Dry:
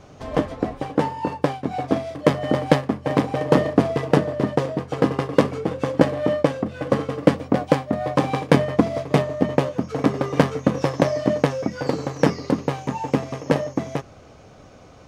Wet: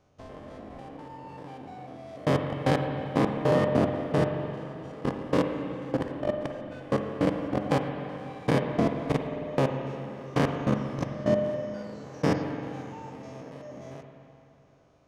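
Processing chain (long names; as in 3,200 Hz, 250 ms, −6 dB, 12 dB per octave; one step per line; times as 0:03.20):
spectrum averaged block by block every 100 ms
output level in coarse steps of 22 dB
spring reverb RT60 2.8 s, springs 43/53 ms, chirp 75 ms, DRR 4 dB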